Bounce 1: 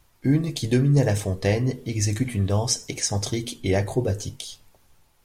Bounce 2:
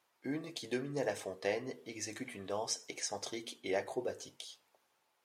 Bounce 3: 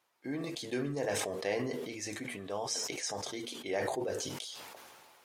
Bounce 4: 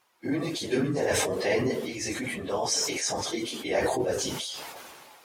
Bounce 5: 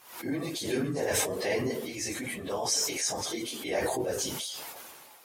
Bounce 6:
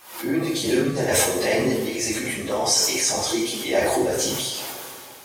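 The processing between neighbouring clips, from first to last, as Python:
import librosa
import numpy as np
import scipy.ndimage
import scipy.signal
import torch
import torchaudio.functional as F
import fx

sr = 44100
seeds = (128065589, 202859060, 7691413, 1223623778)

y1 = scipy.signal.sosfilt(scipy.signal.butter(2, 450.0, 'highpass', fs=sr, output='sos'), x)
y1 = fx.high_shelf(y1, sr, hz=5000.0, db=-9.0)
y1 = y1 * librosa.db_to_amplitude(-8.0)
y2 = fx.sustainer(y1, sr, db_per_s=25.0)
y3 = fx.phase_scramble(y2, sr, seeds[0], window_ms=50)
y3 = y3 * librosa.db_to_amplitude(8.0)
y4 = fx.peak_eq(y3, sr, hz=14000.0, db=10.5, octaves=1.1)
y4 = fx.pre_swell(y4, sr, db_per_s=95.0)
y4 = y4 * librosa.db_to_amplitude(-4.0)
y5 = fx.wow_flutter(y4, sr, seeds[1], rate_hz=2.1, depth_cents=26.0)
y5 = fx.rev_double_slope(y5, sr, seeds[2], early_s=0.58, late_s=3.3, knee_db=-16, drr_db=1.5)
y5 = y5 * librosa.db_to_amplitude(6.5)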